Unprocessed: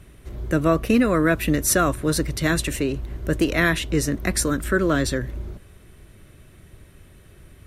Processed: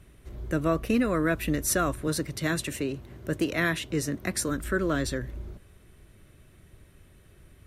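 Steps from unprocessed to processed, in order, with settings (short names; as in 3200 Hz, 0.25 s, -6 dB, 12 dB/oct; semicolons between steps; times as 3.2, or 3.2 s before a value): 2.07–4.49 HPF 80 Hz 24 dB/oct; gain -6.5 dB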